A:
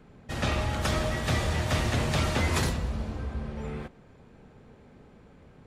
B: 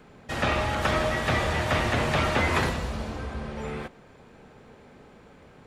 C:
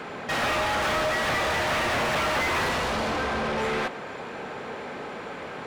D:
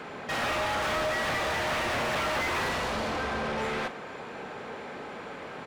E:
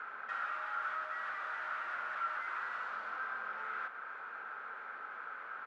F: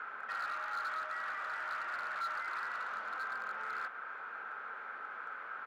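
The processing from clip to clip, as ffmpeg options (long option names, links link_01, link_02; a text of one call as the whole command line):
ffmpeg -i in.wav -filter_complex "[0:a]acrossover=split=3000[link_01][link_02];[link_02]acompressor=threshold=-48dB:ratio=4:attack=1:release=60[link_03];[link_01][link_03]amix=inputs=2:normalize=0,lowshelf=frequency=290:gain=-9.5,volume=7dB" out.wav
ffmpeg -i in.wav -filter_complex "[0:a]asplit=2[link_01][link_02];[link_02]highpass=frequency=720:poles=1,volume=34dB,asoftclip=type=tanh:threshold=-12dB[link_03];[link_01][link_03]amix=inputs=2:normalize=0,lowpass=frequency=2900:poles=1,volume=-6dB,volume=-6.5dB" out.wav
ffmpeg -i in.wav -filter_complex "[0:a]asplit=2[link_01][link_02];[link_02]adelay=42,volume=-13.5dB[link_03];[link_01][link_03]amix=inputs=2:normalize=0,volume=-4dB" out.wav
ffmpeg -i in.wav -af "acompressor=threshold=-34dB:ratio=6,bandpass=frequency=1400:width_type=q:width=7.9:csg=0,volume=7dB" out.wav
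ffmpeg -i in.wav -af "volume=34.5dB,asoftclip=hard,volume=-34.5dB,volume=1dB" out.wav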